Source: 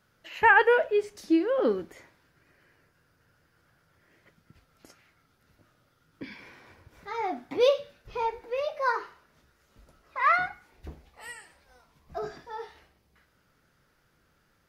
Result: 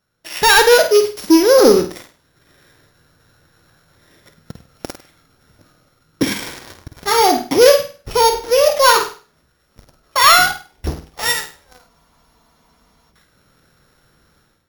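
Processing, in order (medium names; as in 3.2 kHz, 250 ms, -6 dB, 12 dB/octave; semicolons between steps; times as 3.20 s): sorted samples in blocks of 8 samples; in parallel at -2 dB: compression, threshold -37 dBFS, peak gain reduction 20.5 dB; on the sum: waveshaping leveller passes 3; level rider gain up to 15 dB; on a send: flutter echo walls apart 8.6 m, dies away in 0.36 s; on the sum: spectral freeze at 11.91 s, 1.20 s; trim -3 dB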